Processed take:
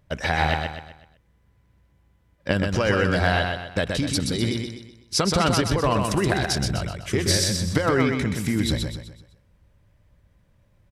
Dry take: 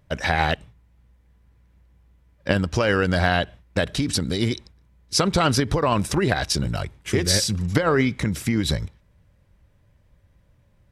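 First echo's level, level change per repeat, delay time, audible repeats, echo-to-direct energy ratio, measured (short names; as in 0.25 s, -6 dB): -4.5 dB, -8.0 dB, 0.126 s, 4, -3.5 dB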